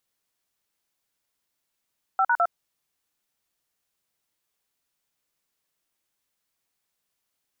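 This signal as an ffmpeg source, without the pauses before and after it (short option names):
-f lavfi -i "aevalsrc='0.0944*clip(min(mod(t,0.104),0.058-mod(t,0.104))/0.002,0,1)*(eq(floor(t/0.104),0)*(sin(2*PI*770*mod(t,0.104))+sin(2*PI*1336*mod(t,0.104)))+eq(floor(t/0.104),1)*(sin(2*PI*941*mod(t,0.104))+sin(2*PI*1477*mod(t,0.104)))+eq(floor(t/0.104),2)*(sin(2*PI*697*mod(t,0.104))+sin(2*PI*1336*mod(t,0.104))))':d=0.312:s=44100"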